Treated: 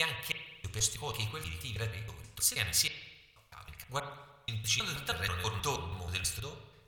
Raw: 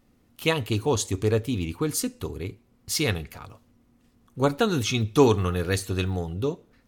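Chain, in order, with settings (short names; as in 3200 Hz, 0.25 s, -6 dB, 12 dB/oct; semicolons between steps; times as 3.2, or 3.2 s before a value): slices in reverse order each 0.16 s, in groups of 4; passive tone stack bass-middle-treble 10-0-10; spring tank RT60 1.1 s, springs 36/47 ms, chirp 60 ms, DRR 5.5 dB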